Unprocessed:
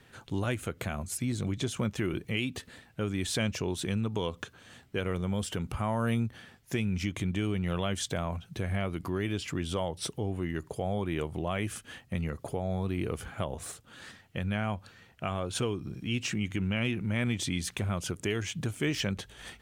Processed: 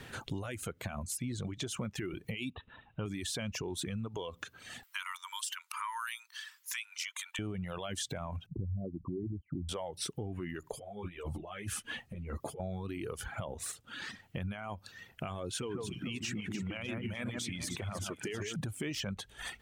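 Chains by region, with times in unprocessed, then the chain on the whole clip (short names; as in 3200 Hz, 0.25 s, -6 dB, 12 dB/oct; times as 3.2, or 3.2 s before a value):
2.5–3.06 rippled Chebyshev low-pass 3900 Hz, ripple 9 dB + low shelf 150 Hz +10.5 dB
4.83–7.39 brick-wall FIR high-pass 890 Hz + high shelf 3700 Hz +7 dB
8.46–9.69 formant sharpening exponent 3 + Bessel low-pass 500 Hz, order 4
10.72–12.6 negative-ratio compressor -37 dBFS, ratio -0.5 + ensemble effect
15.5–18.56 low shelf 76 Hz -10.5 dB + echo with dull and thin repeats by turns 0.149 s, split 2000 Hz, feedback 62%, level -3 dB
whole clip: limiter -25.5 dBFS; reverb removal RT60 1.6 s; compressor 2.5:1, threshold -50 dBFS; gain +9.5 dB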